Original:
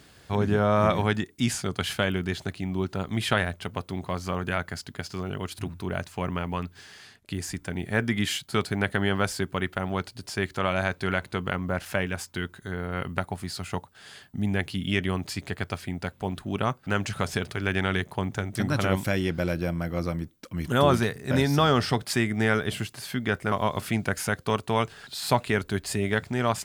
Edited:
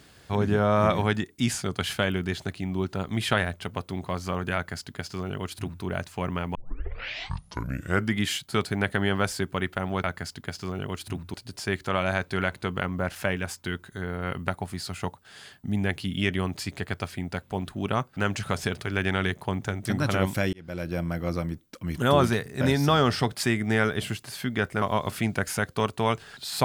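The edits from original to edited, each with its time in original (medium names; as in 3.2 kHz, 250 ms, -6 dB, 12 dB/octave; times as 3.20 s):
4.55–5.85 s: copy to 10.04 s
6.55 s: tape start 1.62 s
19.23–19.73 s: fade in linear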